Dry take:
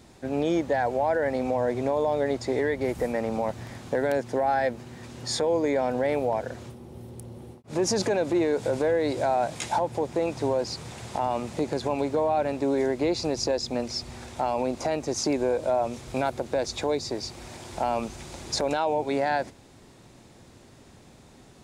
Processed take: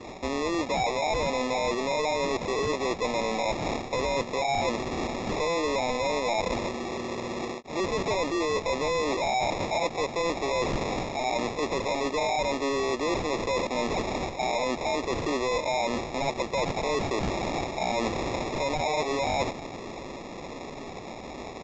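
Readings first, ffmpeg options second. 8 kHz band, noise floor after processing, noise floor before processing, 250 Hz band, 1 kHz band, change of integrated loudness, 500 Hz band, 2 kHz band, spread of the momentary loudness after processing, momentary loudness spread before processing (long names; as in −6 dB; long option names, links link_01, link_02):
−1.0 dB, −40 dBFS, −52 dBFS, −2.5 dB, +1.0 dB, −1.0 dB, −2.0 dB, +3.5 dB, 7 LU, 12 LU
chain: -filter_complex "[0:a]adynamicequalizer=threshold=0.00562:dfrequency=3700:dqfactor=0.74:tfrequency=3700:tqfactor=0.74:attack=5:release=100:ratio=0.375:range=3:mode=boostabove:tftype=bell,asplit=2[link_01][link_02];[link_02]highpass=frequency=720:poles=1,volume=21dB,asoftclip=type=tanh:threshold=-15dB[link_03];[link_01][link_03]amix=inputs=2:normalize=0,lowpass=frequency=2500:poles=1,volume=-6dB,areverse,acompressor=threshold=-31dB:ratio=6,areverse,equalizer=frequency=110:width_type=o:width=0.92:gain=-11.5,acrusher=samples=29:mix=1:aa=0.000001,aresample=16000,aresample=44100,volume=5.5dB"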